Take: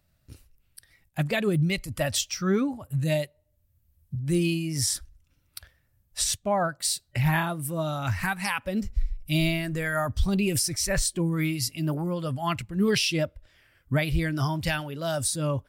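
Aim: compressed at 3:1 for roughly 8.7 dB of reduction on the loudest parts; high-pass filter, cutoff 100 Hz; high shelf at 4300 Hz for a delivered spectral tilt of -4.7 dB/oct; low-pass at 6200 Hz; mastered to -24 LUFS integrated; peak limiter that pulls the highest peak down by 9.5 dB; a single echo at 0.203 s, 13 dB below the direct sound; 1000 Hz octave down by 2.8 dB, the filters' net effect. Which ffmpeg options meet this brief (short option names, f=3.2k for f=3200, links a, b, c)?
-af "highpass=100,lowpass=6.2k,equalizer=f=1k:t=o:g=-4,highshelf=f=4.3k:g=3.5,acompressor=threshold=-32dB:ratio=3,alimiter=level_in=4dB:limit=-24dB:level=0:latency=1,volume=-4dB,aecho=1:1:203:0.224,volume=12.5dB"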